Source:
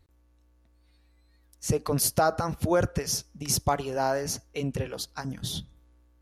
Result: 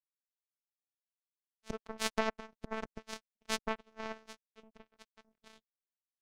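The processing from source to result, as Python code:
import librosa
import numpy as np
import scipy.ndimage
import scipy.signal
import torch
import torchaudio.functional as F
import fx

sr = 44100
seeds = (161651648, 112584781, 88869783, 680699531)

y = fx.robotise(x, sr, hz=221.0)
y = fx.power_curve(y, sr, exponent=3.0)
y = fx.spacing_loss(y, sr, db_at_10k=21)
y = y * librosa.db_to_amplitude(12.0)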